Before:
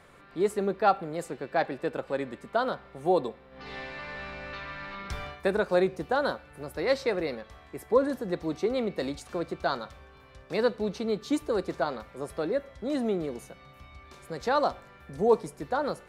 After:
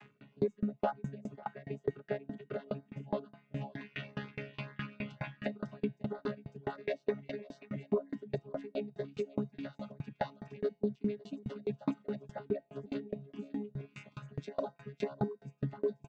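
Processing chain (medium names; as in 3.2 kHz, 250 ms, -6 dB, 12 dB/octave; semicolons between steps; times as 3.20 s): vocoder on a held chord bare fifth, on C#3; bass shelf 400 Hz +4 dB; delay 549 ms -3.5 dB; level rider gain up to 6 dB; peaking EQ 2.7 kHz +11.5 dB 0.77 oct; in parallel at -9.5 dB: hard clipper -10 dBFS, distortion -20 dB; on the sum: compression 4:1, threshold -30 dBFS, peak gain reduction 19 dB; reverb removal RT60 1.1 s; feedback comb 170 Hz, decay 1.5 s, mix 70%; LFO notch saw up 2.1 Hz 460–3100 Hz; sawtooth tremolo in dB decaying 4.8 Hz, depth 31 dB; trim +13.5 dB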